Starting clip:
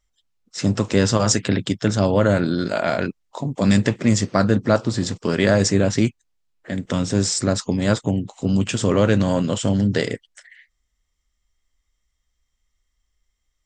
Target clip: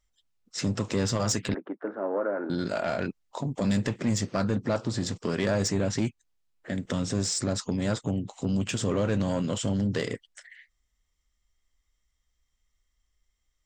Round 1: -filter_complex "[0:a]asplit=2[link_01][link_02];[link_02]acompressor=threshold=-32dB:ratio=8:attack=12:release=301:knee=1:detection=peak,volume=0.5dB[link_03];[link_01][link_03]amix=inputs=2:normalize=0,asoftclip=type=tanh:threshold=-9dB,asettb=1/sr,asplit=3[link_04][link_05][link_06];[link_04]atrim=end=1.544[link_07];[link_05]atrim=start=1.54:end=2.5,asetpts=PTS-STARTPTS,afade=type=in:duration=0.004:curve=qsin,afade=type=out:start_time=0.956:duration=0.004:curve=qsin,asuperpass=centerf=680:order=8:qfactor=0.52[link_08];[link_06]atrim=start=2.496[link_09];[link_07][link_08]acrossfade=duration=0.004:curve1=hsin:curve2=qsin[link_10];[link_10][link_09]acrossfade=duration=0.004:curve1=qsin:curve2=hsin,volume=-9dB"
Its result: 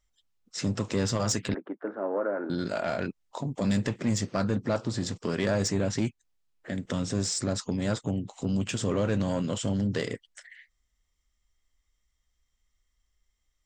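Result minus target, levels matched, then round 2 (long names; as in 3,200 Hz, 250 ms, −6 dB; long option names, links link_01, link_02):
downward compressor: peak gain reduction +5.5 dB
-filter_complex "[0:a]asplit=2[link_01][link_02];[link_02]acompressor=threshold=-25.5dB:ratio=8:attack=12:release=301:knee=1:detection=peak,volume=0.5dB[link_03];[link_01][link_03]amix=inputs=2:normalize=0,asoftclip=type=tanh:threshold=-9dB,asettb=1/sr,asplit=3[link_04][link_05][link_06];[link_04]atrim=end=1.544[link_07];[link_05]atrim=start=1.54:end=2.5,asetpts=PTS-STARTPTS,afade=type=in:duration=0.004:curve=qsin,afade=type=out:start_time=0.956:duration=0.004:curve=qsin,asuperpass=centerf=680:order=8:qfactor=0.52[link_08];[link_06]atrim=start=2.496[link_09];[link_07][link_08]acrossfade=duration=0.004:curve1=hsin:curve2=qsin[link_10];[link_10][link_09]acrossfade=duration=0.004:curve1=qsin:curve2=hsin,volume=-9dB"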